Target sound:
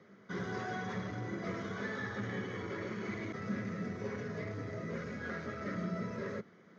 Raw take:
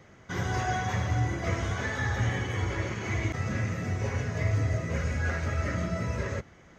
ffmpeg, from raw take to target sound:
ffmpeg -i in.wav -af "asoftclip=type=tanh:threshold=-23.5dB,highpass=frequency=130:width=0.5412,highpass=frequency=130:width=1.3066,equalizer=frequency=140:width_type=q:width=4:gain=-5,equalizer=frequency=200:width_type=q:width=4:gain=10,equalizer=frequency=420:width_type=q:width=4:gain=7,equalizer=frequency=810:width_type=q:width=4:gain=-6,equalizer=frequency=1300:width_type=q:width=4:gain=3,equalizer=frequency=2700:width_type=q:width=4:gain=-8,lowpass=frequency=5200:width=0.5412,lowpass=frequency=5200:width=1.3066,volume=-6.5dB" out.wav

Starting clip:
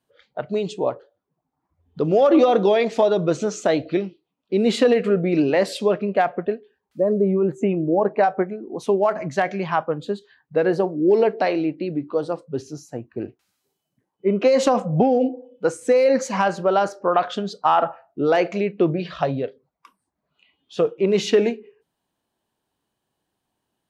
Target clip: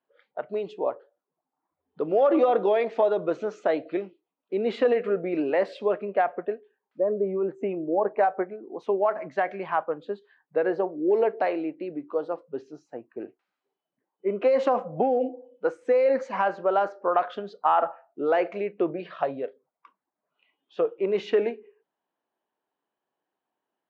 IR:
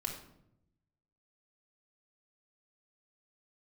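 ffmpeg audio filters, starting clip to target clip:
-af "highpass=360,lowpass=2100,volume=-3.5dB"

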